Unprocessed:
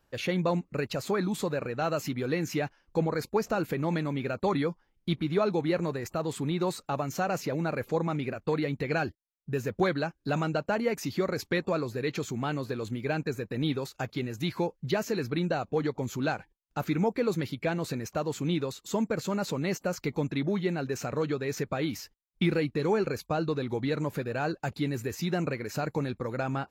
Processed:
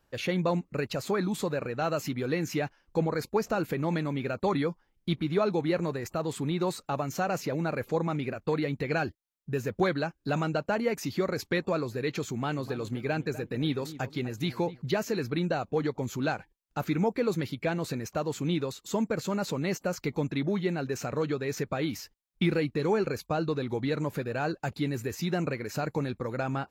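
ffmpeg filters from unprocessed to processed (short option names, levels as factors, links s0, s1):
-filter_complex "[0:a]asettb=1/sr,asplit=3[s0][s1][s2];[s0]atrim=end=12.244[s3];[s1]atrim=start=12.24:end=14.82,asetpts=PTS-STARTPTS,afade=t=in:d=0.004:c=qsin,afade=t=out:st=2.576:d=0.004:c=qsin,asplit=2[s4][s5];[s5]adelay=249,lowpass=f=1700:p=1,volume=0.2,asplit=2[s6][s7];[s7]adelay=249,lowpass=f=1700:p=1,volume=0.3,asplit=2[s8][s9];[s9]adelay=249,lowpass=f=1700:p=1,volume=0.3[s10];[s4][s6][s8][s10]amix=inputs=4:normalize=0,atrim=end_sample=113778[s11];[s2]atrim=start=14.816[s12];[s3][s11]acrossfade=d=0.004:c1=hsin:c2=qsin[s13];[s13][s12]acrossfade=d=0.004:c1=qsin:c2=hsin"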